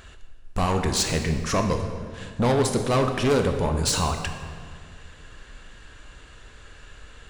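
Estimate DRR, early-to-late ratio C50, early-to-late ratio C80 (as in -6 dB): 5.0 dB, 7.0 dB, 8.5 dB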